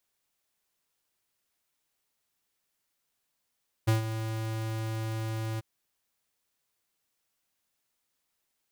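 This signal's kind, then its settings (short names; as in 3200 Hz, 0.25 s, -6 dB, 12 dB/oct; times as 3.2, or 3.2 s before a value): ADSR square 111 Hz, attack 15 ms, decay 0.13 s, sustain -11 dB, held 1.72 s, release 21 ms -22 dBFS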